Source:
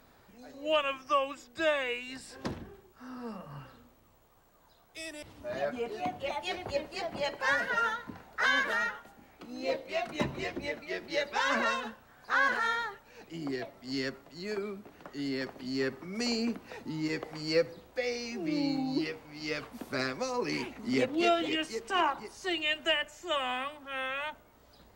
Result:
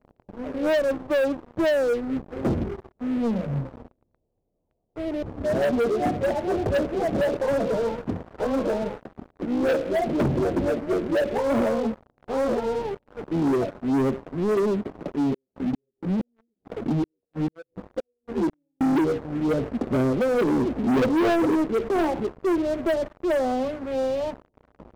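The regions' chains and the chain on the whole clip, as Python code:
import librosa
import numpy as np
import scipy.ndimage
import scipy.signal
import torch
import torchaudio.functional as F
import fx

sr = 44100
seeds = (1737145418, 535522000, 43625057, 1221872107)

y = fx.chain(x, sr, fx.gate_flip(shuts_db=-27.0, range_db=-31),
    fx.ensemble(), at=(15.12, 18.81))
y = scipy.signal.sosfilt(scipy.signal.cheby2(4, 60, 2000.0, 'lowpass', fs=sr, output='sos'), y)
y = fx.leveller(y, sr, passes=5)
y = y * librosa.db_to_amplitude(1.5)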